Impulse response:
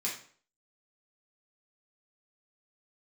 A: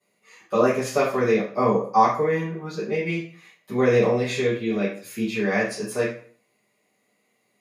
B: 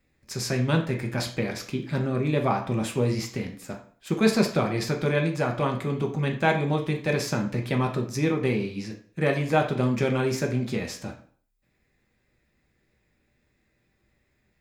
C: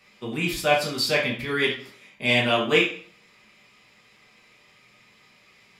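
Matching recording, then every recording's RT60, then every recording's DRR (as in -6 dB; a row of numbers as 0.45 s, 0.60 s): C; 0.50 s, 0.50 s, 0.50 s; -15.0 dB, 2.0 dB, -5.5 dB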